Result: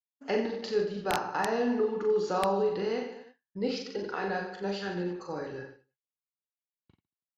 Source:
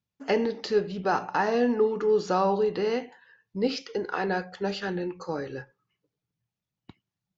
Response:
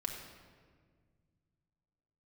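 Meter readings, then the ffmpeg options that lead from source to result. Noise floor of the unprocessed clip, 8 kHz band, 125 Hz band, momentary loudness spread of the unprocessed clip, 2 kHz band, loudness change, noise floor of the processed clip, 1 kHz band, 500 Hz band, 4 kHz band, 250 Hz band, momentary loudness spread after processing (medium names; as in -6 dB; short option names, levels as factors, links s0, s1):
under -85 dBFS, no reading, -3.5 dB, 10 LU, -3.5 dB, -3.5 dB, under -85 dBFS, -4.0 dB, -3.5 dB, -2.5 dB, -3.5 dB, 11 LU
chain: -filter_complex "[0:a]asplit=2[s0][s1];[s1]aecho=0:1:40|90|152.5|230.6|328.3:0.631|0.398|0.251|0.158|0.1[s2];[s0][s2]amix=inputs=2:normalize=0,aeval=exprs='(mod(3.55*val(0)+1,2)-1)/3.55':c=same,agate=range=0.0224:threshold=0.0112:ratio=3:detection=peak,aresample=32000,aresample=44100,volume=0.501"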